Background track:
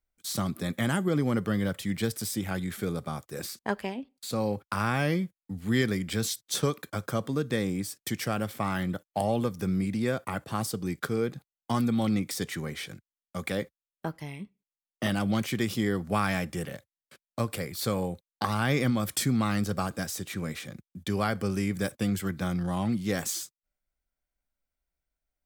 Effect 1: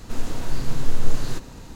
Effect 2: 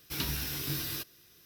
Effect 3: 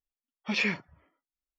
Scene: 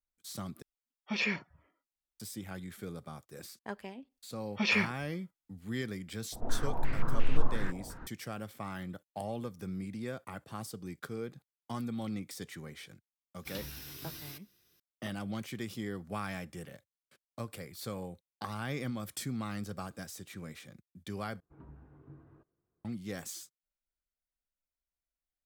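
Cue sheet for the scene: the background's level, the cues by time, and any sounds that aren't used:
background track -11 dB
0.62 replace with 3 -4 dB
4.11 add 3 -0.5 dB
6.32 add 1 -7.5 dB + stepped low-pass 5.7 Hz 710–2600 Hz
13.35 add 2 -10.5 dB
21.4 replace with 2 -15.5 dB + LPF 1100 Hz 24 dB/oct

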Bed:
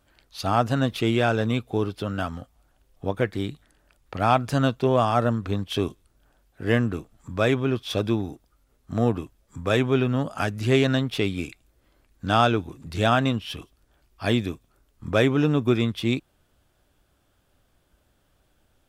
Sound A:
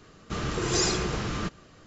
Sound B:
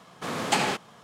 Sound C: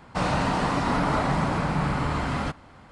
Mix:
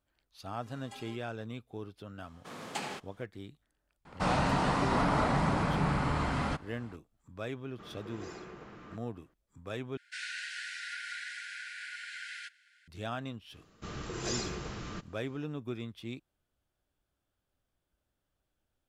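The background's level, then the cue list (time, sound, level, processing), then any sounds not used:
bed -17.5 dB
0.39 add B -15.5 dB + metallic resonator 120 Hz, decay 0.36 s, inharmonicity 0.03
2.23 add B -13.5 dB
4.05 add C -4.5 dB
7.48 add A -16.5 dB + three-band isolator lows -12 dB, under 160 Hz, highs -15 dB, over 2500 Hz
9.97 replace with C -6 dB + brick-wall FIR high-pass 1400 Hz
13.52 add A -10.5 dB

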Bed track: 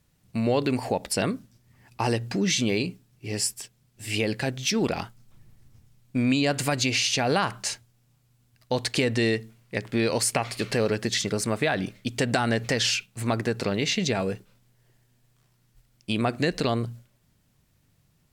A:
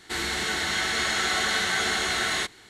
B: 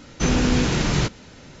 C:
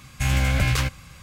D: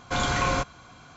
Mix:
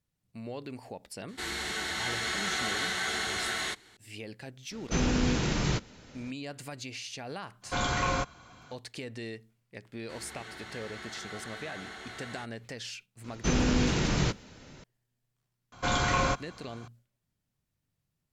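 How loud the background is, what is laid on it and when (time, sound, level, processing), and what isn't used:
bed track -16.5 dB
1.28 add A -6.5 dB
4.71 add B -7.5 dB
7.61 add D -4 dB, fades 0.05 s
9.99 add A -15.5 dB + high shelf 3300 Hz -10.5 dB
13.24 add B -6.5 dB
15.72 add D -2 dB
not used: C

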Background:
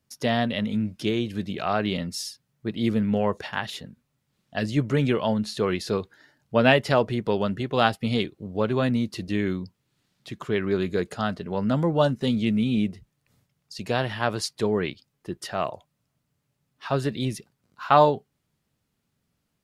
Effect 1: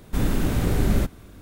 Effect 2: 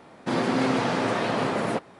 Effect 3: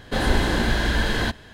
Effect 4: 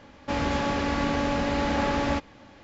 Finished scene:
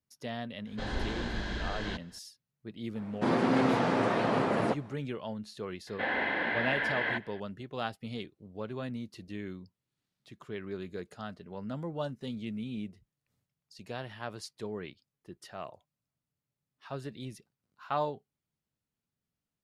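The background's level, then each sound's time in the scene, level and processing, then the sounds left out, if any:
background -14.5 dB
0.66 add 3 -14 dB + LPF 6900 Hz 24 dB/oct
2.95 add 2 -2 dB + high shelf 3100 Hz -9 dB
5.87 add 3 -5.5 dB + speaker cabinet 380–2700 Hz, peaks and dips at 380 Hz -8 dB, 1200 Hz -6 dB, 2000 Hz +8 dB
not used: 1, 4

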